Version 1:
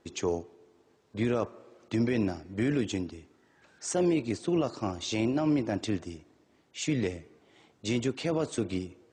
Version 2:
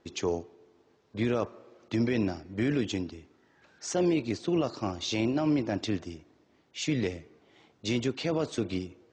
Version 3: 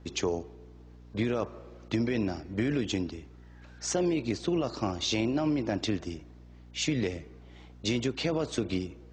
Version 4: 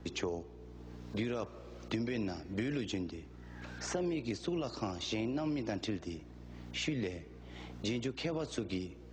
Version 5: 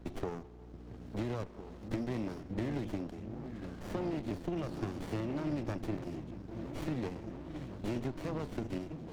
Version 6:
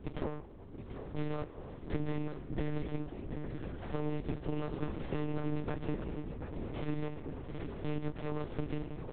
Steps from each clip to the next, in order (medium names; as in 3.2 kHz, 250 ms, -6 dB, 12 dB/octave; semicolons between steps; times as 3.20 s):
low-pass 6.5 kHz 24 dB/octave; dynamic bell 4.5 kHz, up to +3 dB, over -52 dBFS, Q 0.83
compression, threshold -28 dBFS, peak gain reduction 6.5 dB; hum 60 Hz, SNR 19 dB; trim +3.5 dB
three bands compressed up and down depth 70%; trim -7 dB
delay with an opening low-pass 678 ms, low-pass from 200 Hz, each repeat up 1 oct, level -6 dB; sliding maximum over 33 samples
delay 735 ms -10 dB; monotone LPC vocoder at 8 kHz 150 Hz; trim +1 dB